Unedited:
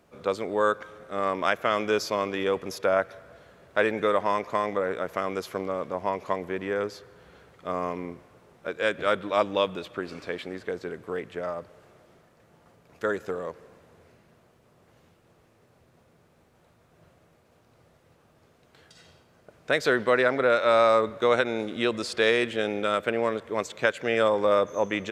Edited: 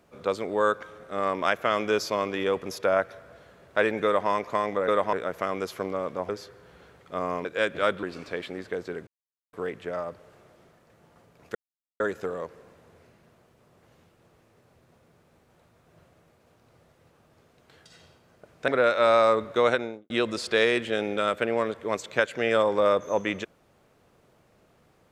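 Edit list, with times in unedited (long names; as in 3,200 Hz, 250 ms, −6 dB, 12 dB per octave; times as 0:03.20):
0:04.05–0:04.30: duplicate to 0:04.88
0:06.04–0:06.82: remove
0:07.98–0:08.69: remove
0:09.27–0:09.99: remove
0:11.03: splice in silence 0.46 s
0:13.05: splice in silence 0.45 s
0:19.73–0:20.34: remove
0:21.35–0:21.76: fade out and dull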